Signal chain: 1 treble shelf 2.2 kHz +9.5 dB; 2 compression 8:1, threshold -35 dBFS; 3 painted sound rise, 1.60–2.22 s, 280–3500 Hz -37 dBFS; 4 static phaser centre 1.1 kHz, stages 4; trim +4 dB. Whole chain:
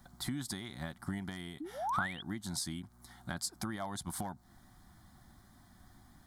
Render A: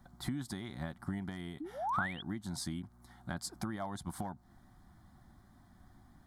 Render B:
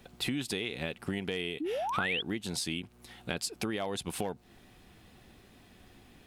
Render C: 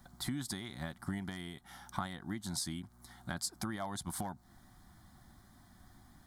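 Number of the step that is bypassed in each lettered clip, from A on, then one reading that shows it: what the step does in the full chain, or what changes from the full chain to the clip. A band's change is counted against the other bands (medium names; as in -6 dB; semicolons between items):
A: 1, 8 kHz band -6.0 dB; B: 4, 500 Hz band +8.5 dB; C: 3, 1 kHz band -4.5 dB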